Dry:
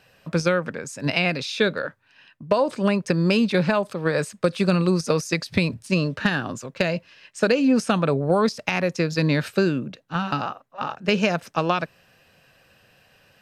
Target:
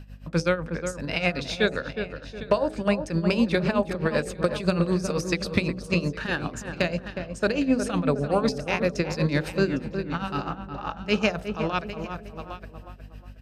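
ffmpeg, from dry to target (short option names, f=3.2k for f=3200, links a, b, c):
-filter_complex "[0:a]aeval=exprs='val(0)+0.0126*(sin(2*PI*50*n/s)+sin(2*PI*2*50*n/s)/2+sin(2*PI*3*50*n/s)/3+sin(2*PI*4*50*n/s)/4+sin(2*PI*5*50*n/s)/5)':c=same,asplit=2[a][b];[b]aecho=0:1:808:0.168[c];[a][c]amix=inputs=2:normalize=0,tremolo=f=7.9:d=0.81,bandreject=f=63.11:t=h:w=4,bandreject=f=126.22:t=h:w=4,bandreject=f=189.33:t=h:w=4,bandreject=f=252.44:t=h:w=4,bandreject=f=315.55:t=h:w=4,bandreject=f=378.66:t=h:w=4,bandreject=f=441.77:t=h:w=4,bandreject=f=504.88:t=h:w=4,bandreject=f=567.99:t=h:w=4,bandreject=f=631.1:t=h:w=4,bandreject=f=694.21:t=h:w=4,bandreject=f=757.32:t=h:w=4,bandreject=f=820.43:t=h:w=4,asplit=2[d][e];[e]adelay=363,lowpass=f=1.4k:p=1,volume=-7dB,asplit=2[f][g];[g]adelay=363,lowpass=f=1.4k:p=1,volume=0.38,asplit=2[h][i];[i]adelay=363,lowpass=f=1.4k:p=1,volume=0.38,asplit=2[j][k];[k]adelay=363,lowpass=f=1.4k:p=1,volume=0.38[l];[f][h][j][l]amix=inputs=4:normalize=0[m];[d][m]amix=inputs=2:normalize=0"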